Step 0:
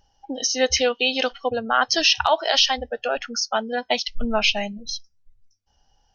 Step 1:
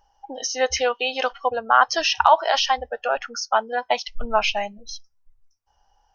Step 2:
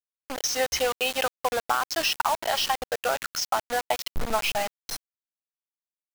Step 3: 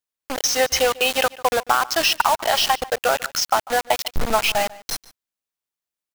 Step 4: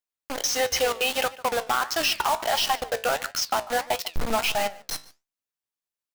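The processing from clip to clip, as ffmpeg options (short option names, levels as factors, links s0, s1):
-af "equalizer=f=125:t=o:w=1:g=-9,equalizer=f=250:t=o:w=1:g=-7,equalizer=f=1000:t=o:w=1:g=10,equalizer=f=4000:t=o:w=1:g=-6,volume=0.841"
-af "acompressor=threshold=0.0891:ratio=12,acrusher=bits=4:mix=0:aa=0.000001"
-filter_complex "[0:a]asplit=2[s0][s1];[s1]adelay=145.8,volume=0.1,highshelf=f=4000:g=-3.28[s2];[s0][s2]amix=inputs=2:normalize=0,volume=2.11"
-af "volume=3.98,asoftclip=hard,volume=0.251,flanger=delay=9.8:depth=8:regen=71:speed=1.5:shape=sinusoidal"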